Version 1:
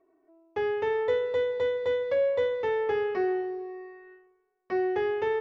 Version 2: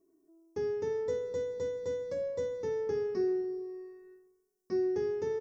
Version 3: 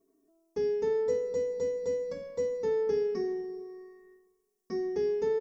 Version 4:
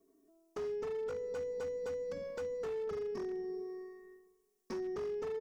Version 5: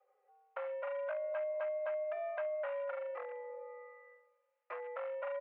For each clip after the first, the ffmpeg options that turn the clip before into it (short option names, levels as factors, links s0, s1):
-af "firequalizer=gain_entry='entry(100,0);entry(170,6);entry(720,-17);entry(1000,-13);entry(3000,-20);entry(5400,9)':delay=0.05:min_phase=1"
-af "aecho=1:1:4.4:0.82"
-filter_complex "[0:a]acrossover=split=130[s0][s1];[s1]acompressor=threshold=0.0126:ratio=5[s2];[s0][s2]amix=inputs=2:normalize=0,aeval=exprs='0.0178*(abs(mod(val(0)/0.0178+3,4)-2)-1)':c=same,volume=1.12"
-af "highpass=f=520:t=q:w=0.5412,highpass=f=520:t=q:w=1.307,lowpass=f=2500:t=q:w=0.5176,lowpass=f=2500:t=q:w=0.7071,lowpass=f=2500:t=q:w=1.932,afreqshift=120,volume=1.88"